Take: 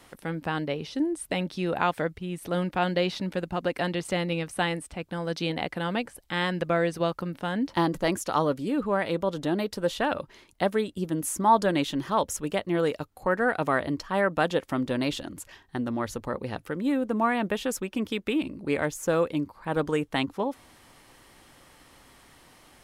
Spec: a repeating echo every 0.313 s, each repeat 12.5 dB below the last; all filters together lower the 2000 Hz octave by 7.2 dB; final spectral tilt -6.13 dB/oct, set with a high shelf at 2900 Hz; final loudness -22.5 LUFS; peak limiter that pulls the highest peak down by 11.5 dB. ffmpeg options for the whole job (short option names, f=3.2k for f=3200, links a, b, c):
-af "equalizer=f=2k:t=o:g=-7,highshelf=f=2.9k:g=-7.5,alimiter=limit=-22.5dB:level=0:latency=1,aecho=1:1:313|626|939:0.237|0.0569|0.0137,volume=10dB"